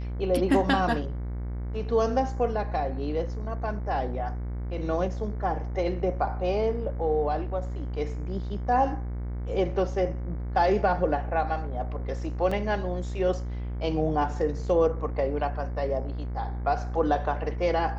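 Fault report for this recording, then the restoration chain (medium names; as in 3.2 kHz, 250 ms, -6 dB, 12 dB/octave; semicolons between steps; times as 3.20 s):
buzz 60 Hz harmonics 38 -32 dBFS
12.51 s: dropout 4.5 ms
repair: de-hum 60 Hz, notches 38; interpolate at 12.51 s, 4.5 ms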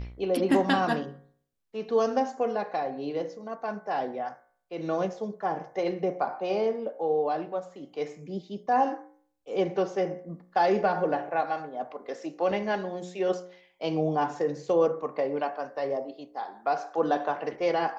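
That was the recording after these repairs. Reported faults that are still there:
nothing left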